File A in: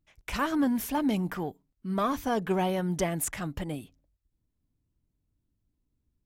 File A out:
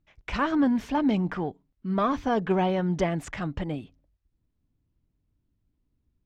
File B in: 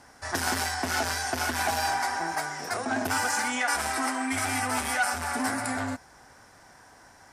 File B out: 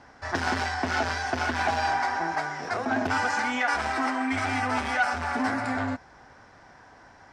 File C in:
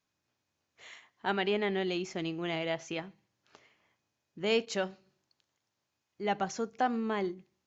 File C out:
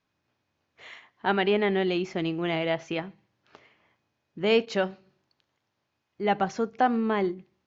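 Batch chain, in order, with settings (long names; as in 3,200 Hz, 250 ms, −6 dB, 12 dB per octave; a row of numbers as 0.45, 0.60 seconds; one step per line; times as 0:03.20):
high-frequency loss of the air 160 metres
loudness normalisation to −27 LKFS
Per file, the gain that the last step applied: +3.5, +3.0, +7.0 decibels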